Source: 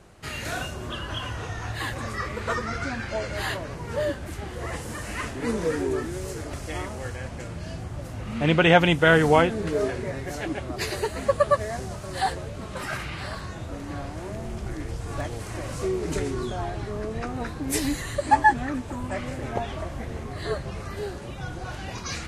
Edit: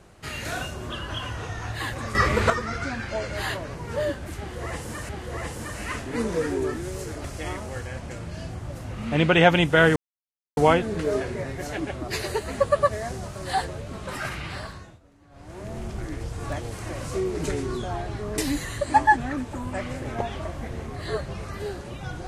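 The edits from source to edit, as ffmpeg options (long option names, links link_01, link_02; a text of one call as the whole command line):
ffmpeg -i in.wav -filter_complex "[0:a]asplit=8[link_01][link_02][link_03][link_04][link_05][link_06][link_07][link_08];[link_01]atrim=end=2.152[link_09];[link_02]atrim=start=2.148:end=2.502,asetpts=PTS-STARTPTS,volume=10dB[link_10];[link_03]atrim=start=2.498:end=5.092[link_11];[link_04]atrim=start=4.378:end=9.25,asetpts=PTS-STARTPTS,afade=type=out:start_time=4.868:duration=0.004:curve=hsin,apad=pad_dur=0.61[link_12];[link_05]atrim=start=9.25:end=13.68,asetpts=PTS-STARTPTS,afade=type=in:duration=0.004:curve=hsin,afade=type=out:start_time=3.96:duration=0.47:silence=0.0794328[link_13];[link_06]atrim=start=13.68:end=13.98,asetpts=PTS-STARTPTS,volume=-22dB[link_14];[link_07]atrim=start=13.98:end=17.062,asetpts=PTS-STARTPTS,afade=type=in:duration=0.47:silence=0.0794328[link_15];[link_08]atrim=start=17.748[link_16];[link_09][link_10]acrossfade=duration=0.004:curve1=hsin:curve2=hsin[link_17];[link_17][link_11]acrossfade=duration=0.004:curve1=hsin:curve2=hsin[link_18];[link_12][link_13][link_14][link_15]concat=n=4:v=0:a=1[link_19];[link_18][link_19]acrossfade=duration=0.004:curve1=hsin:curve2=hsin[link_20];[link_20][link_16]acrossfade=duration=0.004:curve1=hsin:curve2=hsin" out.wav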